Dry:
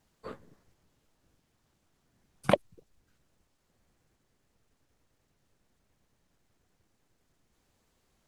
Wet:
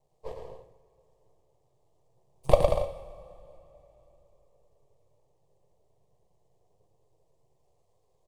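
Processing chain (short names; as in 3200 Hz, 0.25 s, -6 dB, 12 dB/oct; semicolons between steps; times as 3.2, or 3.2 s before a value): graphic EQ 125/250/500/1000/2000/8000 Hz +7/+5/+10/+7/-4/+5 dB; half-wave rectifier; fixed phaser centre 600 Hz, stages 4; bouncing-ball echo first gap 0.11 s, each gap 0.7×, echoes 5; two-slope reverb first 0.58 s, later 3.7 s, from -18 dB, DRR 6 dB; mismatched tape noise reduction decoder only; gain -1 dB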